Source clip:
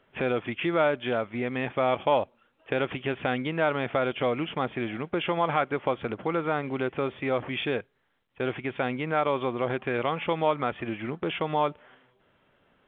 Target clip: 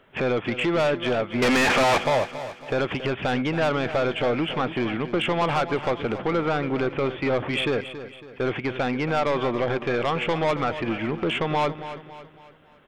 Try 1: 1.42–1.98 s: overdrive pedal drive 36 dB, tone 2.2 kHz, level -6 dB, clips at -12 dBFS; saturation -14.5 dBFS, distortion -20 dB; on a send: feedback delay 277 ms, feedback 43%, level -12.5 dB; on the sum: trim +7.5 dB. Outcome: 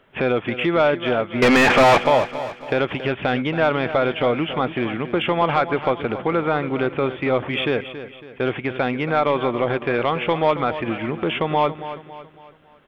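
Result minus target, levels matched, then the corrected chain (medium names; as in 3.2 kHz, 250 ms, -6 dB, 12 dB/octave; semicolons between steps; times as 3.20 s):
saturation: distortion -12 dB
1.42–1.98 s: overdrive pedal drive 36 dB, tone 2.2 kHz, level -6 dB, clips at -12 dBFS; saturation -25.5 dBFS, distortion -8 dB; on a send: feedback delay 277 ms, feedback 43%, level -12.5 dB; on the sum: trim +7.5 dB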